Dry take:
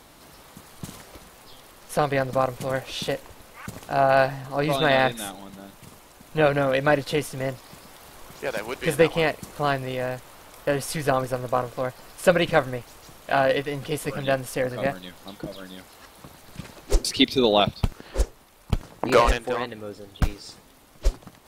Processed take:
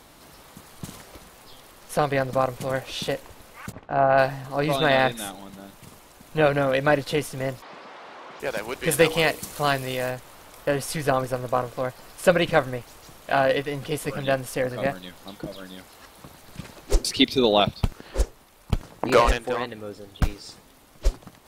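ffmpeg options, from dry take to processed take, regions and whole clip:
-filter_complex "[0:a]asettb=1/sr,asplit=3[s0][s1][s2];[s0]atrim=end=3.724[s3];[s1]atrim=start=3.72:end=4.18,asetpts=PTS-STARTPTS,afade=t=in:d=0.004:c=qsin,afade=t=out:st=0.456:d=0.004:c=qsin,lowpass=2000,agate=range=0.0224:threshold=0.00891:ratio=3:release=100:detection=peak[s4];[s2]atrim=start=4.176[s5];[s3][s4]acrossfade=d=0.004:c1=hsin:c2=qsin[s6];[s6][s5]acrossfade=d=0.004:c1=qsin:c2=hsin,asettb=1/sr,asplit=3[s7][s8][s9];[s7]atrim=end=7.624[s10];[s8]atrim=start=7.62:end=8.4,asetpts=PTS-STARTPTS,afade=t=in:d=0.004:c=qsin,afade=t=out:st=0.776:d=0.004:c=qsin,asplit=2[s11][s12];[s12]highpass=f=720:p=1,volume=12.6,asoftclip=type=tanh:threshold=0.0299[s13];[s11][s13]amix=inputs=2:normalize=0,lowpass=f=1400:p=1,volume=0.501,highpass=200,lowpass=4600[s14];[s9]atrim=start=8.396[s15];[s10][s14]acrossfade=d=0.004:c1=hsin:c2=qsin[s16];[s16][s15]acrossfade=d=0.004:c1=qsin:c2=hsin,asettb=1/sr,asplit=3[s17][s18][s19];[s17]atrim=end=8.914[s20];[s18]atrim=start=8.91:end=10.11,asetpts=PTS-STARTPTS,afade=t=in:d=0.004:c=qsin,afade=t=out:st=1.196:d=0.004:c=qsin,highshelf=f=3100:g=10,bandreject=f=60:t=h:w=6,bandreject=f=120:t=h:w=6,bandreject=f=180:t=h:w=6,bandreject=f=240:t=h:w=6,bandreject=f=300:t=h:w=6,bandreject=f=360:t=h:w=6,bandreject=f=420:t=h:w=6,bandreject=f=480:t=h:w=6[s21];[s19]atrim=start=10.106[s22];[s20][s21]acrossfade=d=0.004:c1=hsin:c2=qsin[s23];[s23][s22]acrossfade=d=0.004:c1=qsin:c2=hsin"

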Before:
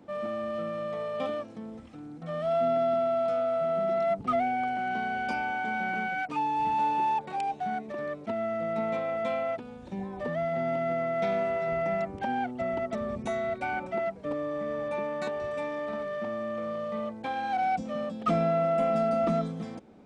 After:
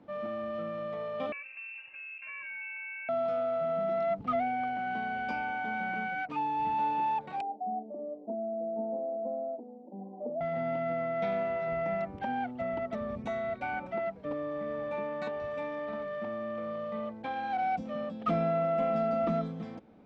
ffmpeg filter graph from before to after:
-filter_complex "[0:a]asettb=1/sr,asplit=3[s0][s1][s2];[s0]atrim=end=1.324[s3];[s1]atrim=start=1.32:end=3.09,asetpts=PTS-STARTPTS,afade=t=in:d=0.004:c=qsin,afade=t=out:st=1.766:d=0.004:c=qsin,aecho=1:1:3.9:0.58,atrim=end_sample=78057,acompressor=threshold=0.0158:ratio=4:attack=3.2:release=140:knee=1:detection=peak,lowpass=f=2500:t=q:w=0.5098,lowpass=f=2500:t=q:w=0.6013,lowpass=f=2500:t=q:w=0.9,lowpass=f=2500:t=q:w=2.563,afreqshift=-2900[s4];[s2]atrim=start=3.086[s5];[s3][s4]acrossfade=d=0.004:c1=hsin:c2=qsin[s6];[s6][s5]acrossfade=d=0.004:c1=qsin:c2=hsin,asettb=1/sr,asplit=3[s7][s8][s9];[s7]atrim=end=7.414[s10];[s8]atrim=start=7.41:end=10.41,asetpts=PTS-STARTPTS,afade=t=in:d=0.004:c=qsin,afade=t=out:st=2.996:d=0.004:c=qsin,asuperpass=centerf=410:order=12:qfactor=0.68,asplit=2[s11][s12];[s12]adelay=35,volume=0.251[s13];[s11][s13]amix=inputs=2:normalize=0,atrim=end_sample=132300[s14];[s9]atrim=start=10.406[s15];[s10][s14]acrossfade=d=0.004:c1=hsin:c2=qsin[s16];[s16][s15]acrossfade=d=0.004:c1=qsin:c2=hsin,lowpass=3900,bandreject=f=380:w=12,volume=0.708"

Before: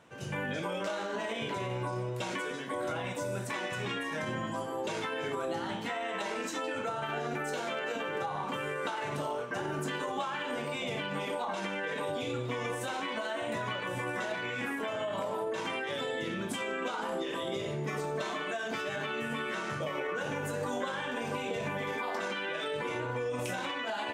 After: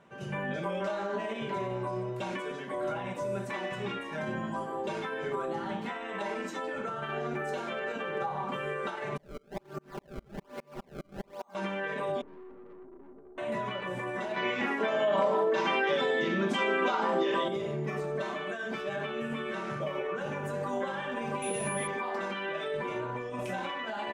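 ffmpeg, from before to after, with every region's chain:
-filter_complex "[0:a]asettb=1/sr,asplit=3[s0][s1][s2];[s0]atrim=end=9.174[s3];[s1]atrim=start=9.17:end=11.55,asetpts=PTS-STARTPTS,afade=t=in:d=0.004:c=qsin,afade=t=out:st=2.376:d=0.004:c=qsin,acrusher=samples=28:mix=1:aa=0.000001:lfo=1:lforange=44.8:lforate=1.2,aeval=exprs='val(0)*pow(10,-38*if(lt(mod(-4.9*n/s,1),2*abs(-4.9)/1000),1-mod(-4.9*n/s,1)/(2*abs(-4.9)/1000),(mod(-4.9*n/s,1)-2*abs(-4.9)/1000)/(1-2*abs(-4.9)/1000))/20)':c=same[s4];[s2]atrim=start=11.546[s5];[s3][s4]acrossfade=d=0.004:c1=hsin:c2=qsin[s6];[s6][s5]acrossfade=d=0.004:c1=qsin:c2=hsin,asettb=1/sr,asplit=3[s7][s8][s9];[s7]atrim=end=12.214[s10];[s8]atrim=start=12.21:end=13.38,asetpts=PTS-STARTPTS,afade=t=in:d=0.004:c=qsin,afade=t=out:st=1.166:d=0.004:c=qsin,asuperpass=centerf=340:order=8:qfactor=1.9,aeval=exprs='(tanh(282*val(0)+0.5)-tanh(0.5))/282':c=same[s11];[s9]atrim=start=13.376[s12];[s10][s11]acrossfade=d=0.004:c1=hsin:c2=qsin[s13];[s13][s12]acrossfade=d=0.004:c1=qsin:c2=hsin,asettb=1/sr,asplit=3[s14][s15][s16];[s14]atrim=end=14.364[s17];[s15]atrim=start=14.36:end=17.48,asetpts=PTS-STARTPTS,afade=t=in:d=0.004:c=qsin,afade=t=out:st=3.116:d=0.004:c=qsin,highpass=210,highshelf=f=7600:t=q:w=1.5:g=-9.5,acontrast=67[s18];[s16]atrim=start=17.476[s19];[s17][s18]acrossfade=d=0.004:c1=hsin:c2=qsin[s20];[s20][s19]acrossfade=d=0.004:c1=qsin:c2=hsin,asettb=1/sr,asplit=3[s21][s22][s23];[s21]atrim=end=21.424[s24];[s22]atrim=start=21.42:end=21.87,asetpts=PTS-STARTPTS,afade=t=in:d=0.004:c=qsin,afade=t=out:st=0.446:d=0.004:c=qsin,aeval=exprs='val(0)+0.0141*sin(2*PI*10000*n/s)':c=same,highshelf=f=3400:g=8[s25];[s23]atrim=start=21.866[s26];[s24][s25]acrossfade=d=0.004:c1=hsin:c2=qsin[s27];[s27][s26]acrossfade=d=0.004:c1=qsin:c2=hsin,highshelf=f=3000:g=-11.5,aecho=1:1:5.1:0.58"

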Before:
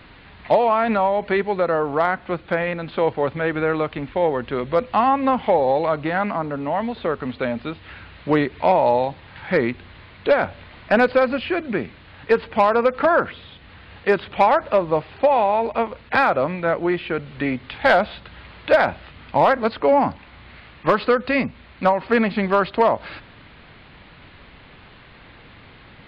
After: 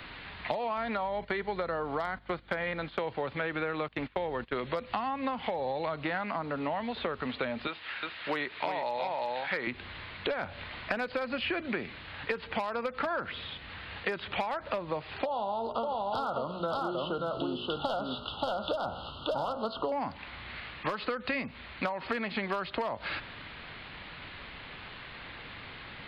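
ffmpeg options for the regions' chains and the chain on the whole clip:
-filter_complex "[0:a]asettb=1/sr,asplit=3[s0][s1][s2];[s0]atrim=end=0.774[s3];[s1]atrim=start=0.77:end=2.99,asetpts=PTS-STARTPTS,afade=t=in:d=0.004:c=qsin,afade=t=out:st=2.216:d=0.004:c=qsin,aeval=exprs='val(0)+0.01*(sin(2*PI*50*n/s)+sin(2*PI*2*50*n/s)/2+sin(2*PI*3*50*n/s)/3+sin(2*PI*4*50*n/s)/4+sin(2*PI*5*50*n/s)/5)':c=same,bandreject=f=2600:w=10,agate=range=0.251:threshold=0.0251:ratio=16:release=100:detection=peak[s4];[s2]atrim=start=2.986[s5];[s3][s4]acrossfade=d=0.004:c1=hsin:c2=qsin[s6];[s6][s5]acrossfade=d=0.004:c1=qsin:c2=hsin,asettb=1/sr,asplit=3[s7][s8][s9];[s7]atrim=end=3.884[s10];[s8]atrim=start=3.88:end=4.56,asetpts=PTS-STARTPTS,afade=t=in:d=0.004:c=qsin,afade=t=out:st=0.676:d=0.004:c=qsin,aeval=exprs='val(0)+0.0112*(sin(2*PI*50*n/s)+sin(2*PI*2*50*n/s)/2+sin(2*PI*3*50*n/s)/3+sin(2*PI*4*50*n/s)/4+sin(2*PI*5*50*n/s)/5)':c=same,agate=range=0.0891:threshold=0.0282:ratio=16:release=100:detection=peak[s11];[s9]atrim=start=4.556[s12];[s10][s11]acrossfade=d=0.004:c1=hsin:c2=qsin[s13];[s13][s12]acrossfade=d=0.004:c1=qsin:c2=hsin,asettb=1/sr,asplit=3[s14][s15][s16];[s14]atrim=end=7.674[s17];[s15]atrim=start=7.67:end=9.67,asetpts=PTS-STARTPTS,afade=t=in:d=0.004:c=qsin,afade=t=out:st=1.996:d=0.004:c=qsin,highpass=f=840:p=1,aecho=1:1:356:0.668,atrim=end_sample=88200[s18];[s16]atrim=start=9.666[s19];[s17][s18]acrossfade=d=0.004:c1=hsin:c2=qsin[s20];[s20][s19]acrossfade=d=0.004:c1=qsin:c2=hsin,asettb=1/sr,asplit=3[s21][s22][s23];[s21]atrim=end=15.254[s24];[s22]atrim=start=15.25:end=19.92,asetpts=PTS-STARTPTS,afade=t=in:d=0.004:c=qsin,afade=t=out:st=4.666:d=0.004:c=qsin,asuperstop=centerf=2000:order=20:qfactor=1.5,bandreject=f=60.27:t=h:w=4,bandreject=f=120.54:t=h:w=4,bandreject=f=180.81:t=h:w=4,bandreject=f=241.08:t=h:w=4,bandreject=f=301.35:t=h:w=4,bandreject=f=361.62:t=h:w=4,bandreject=f=421.89:t=h:w=4,bandreject=f=482.16:t=h:w=4,bandreject=f=542.43:t=h:w=4,bandreject=f=602.7:t=h:w=4,bandreject=f=662.97:t=h:w=4,bandreject=f=723.24:t=h:w=4,bandreject=f=783.51:t=h:w=4,bandreject=f=843.78:t=h:w=4,bandreject=f=904.05:t=h:w=4,bandreject=f=964.32:t=h:w=4,bandreject=f=1024.59:t=h:w=4,bandreject=f=1084.86:t=h:w=4,bandreject=f=1145.13:t=h:w=4,bandreject=f=1205.4:t=h:w=4,bandreject=f=1265.67:t=h:w=4,bandreject=f=1325.94:t=h:w=4,bandreject=f=1386.21:t=h:w=4,bandreject=f=1446.48:t=h:w=4,bandreject=f=1506.75:t=h:w=4,bandreject=f=1567.02:t=h:w=4,bandreject=f=1627.29:t=h:w=4,bandreject=f=1687.56:t=h:w=4,bandreject=f=1747.83:t=h:w=4,bandreject=f=1808.1:t=h:w=4,bandreject=f=1868.37:t=h:w=4,bandreject=f=1928.64:t=h:w=4,bandreject=f=1988.91:t=h:w=4,bandreject=f=2049.18:t=h:w=4,bandreject=f=2109.45:t=h:w=4,bandreject=f=2169.72:t=h:w=4,aecho=1:1:580:0.668,atrim=end_sample=205947[s25];[s23]atrim=start=19.916[s26];[s24][s25]acrossfade=d=0.004:c1=hsin:c2=qsin[s27];[s27][s26]acrossfade=d=0.004:c1=qsin:c2=hsin,acompressor=threshold=0.0891:ratio=6,tiltshelf=f=740:g=-4,acrossover=split=220|4100[s28][s29][s30];[s28]acompressor=threshold=0.00631:ratio=4[s31];[s29]acompressor=threshold=0.0282:ratio=4[s32];[s30]acompressor=threshold=0.00316:ratio=4[s33];[s31][s32][s33]amix=inputs=3:normalize=0"

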